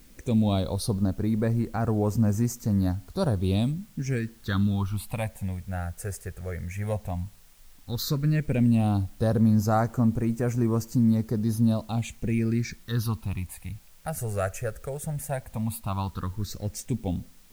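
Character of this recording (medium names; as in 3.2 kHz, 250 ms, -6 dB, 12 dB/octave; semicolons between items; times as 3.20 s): phasing stages 6, 0.12 Hz, lowest notch 260–3600 Hz; a quantiser's noise floor 10-bit, dither triangular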